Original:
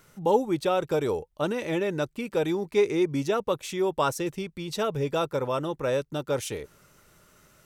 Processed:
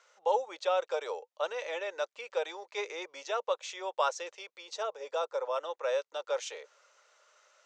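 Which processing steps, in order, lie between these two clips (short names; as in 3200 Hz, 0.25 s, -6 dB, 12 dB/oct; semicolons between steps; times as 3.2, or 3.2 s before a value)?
4.59–5.56 dynamic EQ 2600 Hz, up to -6 dB, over -45 dBFS, Q 0.81; Chebyshev band-pass 510–6900 Hz, order 4; gain -3 dB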